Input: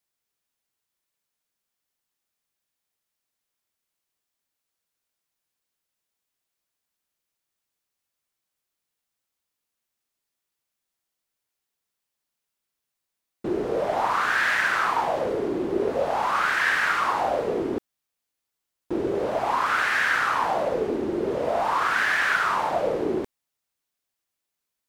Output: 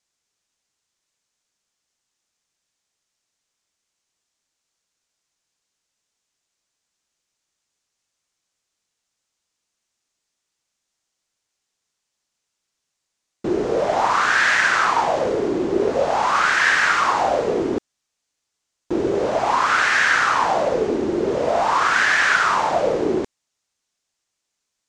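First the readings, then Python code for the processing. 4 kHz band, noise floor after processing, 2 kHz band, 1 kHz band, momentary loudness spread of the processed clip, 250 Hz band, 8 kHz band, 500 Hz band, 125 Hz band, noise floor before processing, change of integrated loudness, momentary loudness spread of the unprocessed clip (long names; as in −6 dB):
+7.0 dB, −80 dBFS, +5.5 dB, +5.0 dB, 8 LU, +5.0 dB, +10.0 dB, +5.0 dB, +5.0 dB, −84 dBFS, +5.5 dB, 7 LU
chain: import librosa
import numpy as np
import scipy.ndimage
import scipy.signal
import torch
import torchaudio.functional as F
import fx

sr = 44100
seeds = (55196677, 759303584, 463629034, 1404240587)

y = fx.lowpass_res(x, sr, hz=6800.0, q=2.0)
y = y * 10.0 ** (5.0 / 20.0)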